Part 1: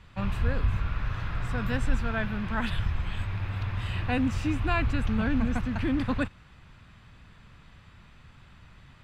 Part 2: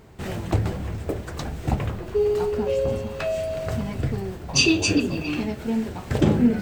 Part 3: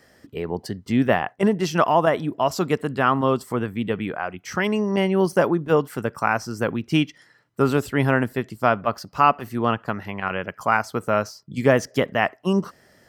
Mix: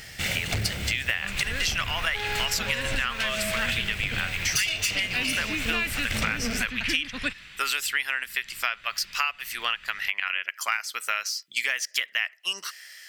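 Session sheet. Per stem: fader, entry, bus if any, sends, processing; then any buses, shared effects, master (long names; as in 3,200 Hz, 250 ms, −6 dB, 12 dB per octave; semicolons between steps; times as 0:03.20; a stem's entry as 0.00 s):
+1.0 dB, 1.05 s, no send, parametric band 89 Hz −9 dB 1.6 octaves
0.0 dB, 0.00 s, no send, lower of the sound and its delayed copy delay 1.4 ms; soft clipping −20 dBFS, distortion −12 dB
+1.0 dB, 0.00 s, no send, high-pass filter 1,300 Hz 12 dB per octave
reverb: not used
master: high shelf with overshoot 1,500 Hz +13.5 dB, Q 1.5; downward compressor 10 to 1, threshold −23 dBFS, peak gain reduction 18.5 dB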